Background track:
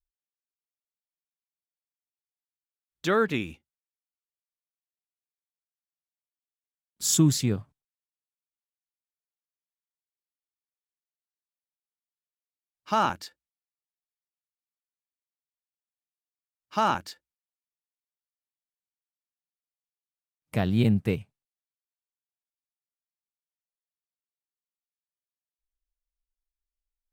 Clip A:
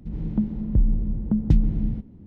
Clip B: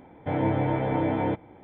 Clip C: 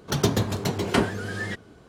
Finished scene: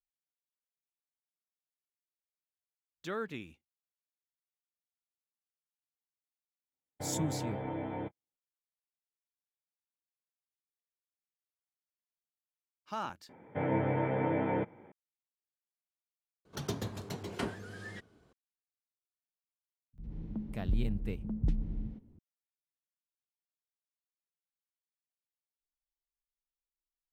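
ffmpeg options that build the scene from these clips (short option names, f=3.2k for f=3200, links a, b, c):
-filter_complex "[2:a]asplit=2[a][b];[0:a]volume=-14dB[c];[a]agate=range=-42dB:threshold=-36dB:ratio=16:release=100:detection=peak[d];[b]highpass=140,equalizer=f=300:t=q:w=4:g=-6,equalizer=f=730:t=q:w=4:g=-6,equalizer=f=1.1k:t=q:w=4:g=-3,lowpass=f=2.7k:w=0.5412,lowpass=f=2.7k:w=1.3066[e];[1:a]acrossover=split=170[f][g];[g]adelay=50[h];[f][h]amix=inputs=2:normalize=0[i];[c]asplit=2[j][k];[j]atrim=end=16.454[l];[3:a]atrim=end=1.88,asetpts=PTS-STARTPTS,volume=-14.5dB[m];[k]atrim=start=18.326[n];[d]atrim=end=1.63,asetpts=PTS-STARTPTS,volume=-12.5dB,afade=t=in:d=0.004:c=hsin,afade=t=out:st=1.626:d=0.004:c=hsin,adelay=6730[o];[e]atrim=end=1.63,asetpts=PTS-STARTPTS,volume=-2.5dB,afade=t=in:d=0.004:c=hsin,afade=t=out:st=1.626:d=0.004:c=hsin,adelay=13290[p];[i]atrim=end=2.26,asetpts=PTS-STARTPTS,volume=-12dB,afade=t=in:d=0.004:c=hsin,afade=t=out:st=2.256:d=0.004:c=hsin,adelay=19930[q];[l][m]acrossfade=d=0.004:c1=hsin:c2=hsin[r];[r][n]acrossfade=d=0.004:c1=hsin:c2=hsin[s];[s][o][p][q]amix=inputs=4:normalize=0"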